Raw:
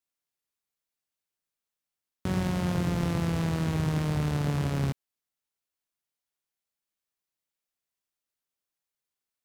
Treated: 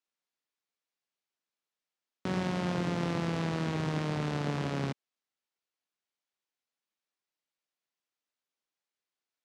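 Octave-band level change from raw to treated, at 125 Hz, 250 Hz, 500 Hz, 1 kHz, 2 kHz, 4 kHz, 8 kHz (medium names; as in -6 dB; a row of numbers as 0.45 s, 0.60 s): -6.0 dB, -3.5 dB, 0.0 dB, 0.0 dB, 0.0 dB, -0.5 dB, -5.5 dB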